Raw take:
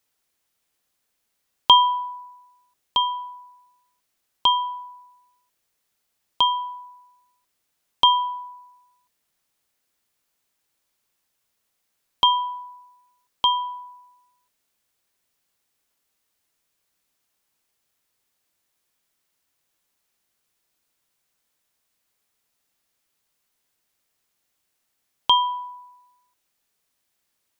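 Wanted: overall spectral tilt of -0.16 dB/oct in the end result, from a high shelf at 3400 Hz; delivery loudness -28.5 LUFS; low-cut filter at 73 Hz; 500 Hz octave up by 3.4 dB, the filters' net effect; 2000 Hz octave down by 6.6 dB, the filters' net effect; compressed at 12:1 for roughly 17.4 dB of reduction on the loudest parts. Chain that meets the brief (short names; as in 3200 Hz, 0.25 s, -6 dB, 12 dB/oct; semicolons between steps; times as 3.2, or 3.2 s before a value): HPF 73 Hz; bell 500 Hz +5 dB; bell 2000 Hz -6.5 dB; high shelf 3400 Hz -7.5 dB; compressor 12:1, threshold -28 dBFS; gain +6.5 dB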